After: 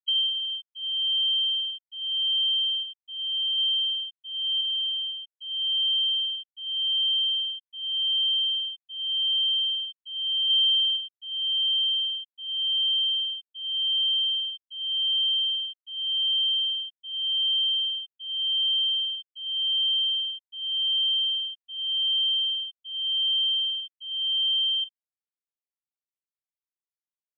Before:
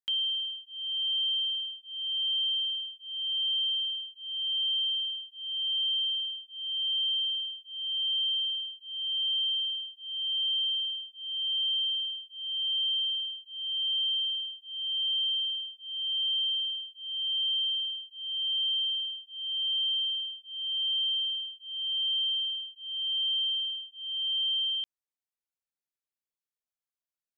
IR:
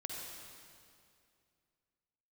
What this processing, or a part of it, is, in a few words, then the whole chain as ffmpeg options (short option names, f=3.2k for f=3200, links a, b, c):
keyed gated reverb: -filter_complex "[0:a]asplit=3[a][b][c];[1:a]atrim=start_sample=2205[d];[b][d]afir=irnorm=-1:irlink=0[e];[c]apad=whole_len=1207438[f];[e][f]sidechaingate=range=-33dB:threshold=-42dB:ratio=16:detection=peak,volume=2.5dB[g];[a][g]amix=inputs=2:normalize=0,asplit=3[h][i][j];[h]afade=t=out:st=2.82:d=0.02[k];[i]adynamicequalizer=threshold=0.0126:dfrequency=3000:dqfactor=4.6:tfrequency=3000:tqfactor=4.6:attack=5:release=100:ratio=0.375:range=2:mode=cutabove:tftype=bell,afade=t=in:st=2.82:d=0.02,afade=t=out:st=3.57:d=0.02[l];[j]afade=t=in:st=3.57:d=0.02[m];[k][l][m]amix=inputs=3:normalize=0,asettb=1/sr,asplit=3[n][o][p];[n]atrim=end=4.614[q];[o]atrim=start=4.61:end=5.26,asetpts=PTS-STARTPTS,afade=t=in:d=0.004:c=qsin,afade=t=out:st=0.646:d=0.004:c=qsin,lowpass=3k[r];[p]atrim=start=5.256[s];[q][r]acrossfade=d=0.004:c1=hsin:c2=qsin[t];[t][s]acrossfade=d=0.004:c1=qsin:c2=hsin,asettb=1/sr,asplit=3[u][v][w];[u]atrim=end=10.494[x];[v]atrim=start=10.49:end=10.97,asetpts=PTS-STARTPTS,afade=t=in:d=0.004:c=qsin,afade=t=out:st=0.476:d=0.004:c=qsin,aecho=1:1:5.7:0.55,atrim=end_sample=21168[y];[w]atrim=start=10.966[z];[x][y]acrossfade=d=0.004:c1=hsin:c2=qsin[aa];[aa][z]acrossfade=d=0.004:c1=qsin:c2=hsin,afftfilt=real='re*gte(hypot(re,im),0.158)':imag='im*gte(hypot(re,im),0.158)':win_size=1024:overlap=0.75"